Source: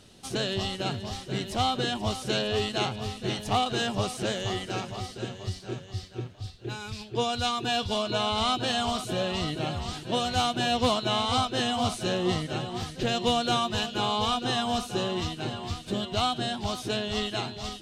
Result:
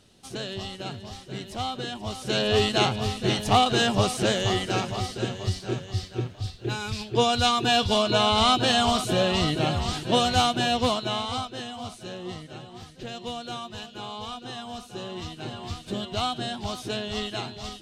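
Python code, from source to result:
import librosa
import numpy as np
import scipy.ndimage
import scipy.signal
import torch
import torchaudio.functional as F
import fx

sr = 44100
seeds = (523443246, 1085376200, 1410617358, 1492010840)

y = fx.gain(x, sr, db=fx.line((2.06, -4.5), (2.52, 6.0), (10.2, 6.0), (11.17, -2.0), (11.71, -9.5), (14.78, -9.5), (15.67, -1.0)))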